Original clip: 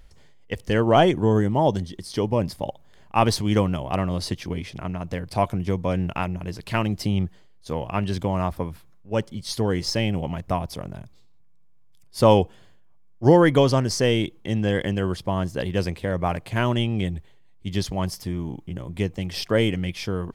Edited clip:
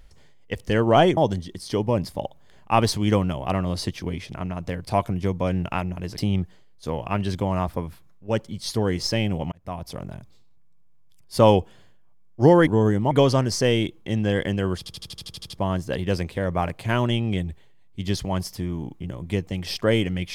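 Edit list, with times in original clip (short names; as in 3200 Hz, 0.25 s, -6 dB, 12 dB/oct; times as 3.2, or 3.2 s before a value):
1.17–1.61 move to 13.5
6.62–7.01 cut
10.35–10.84 fade in
15.17 stutter 0.08 s, 10 plays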